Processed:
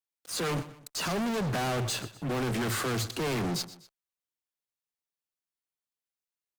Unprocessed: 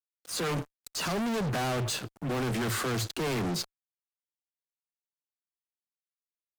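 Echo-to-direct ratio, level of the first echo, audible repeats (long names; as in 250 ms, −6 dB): −15.5 dB, −16.5 dB, 2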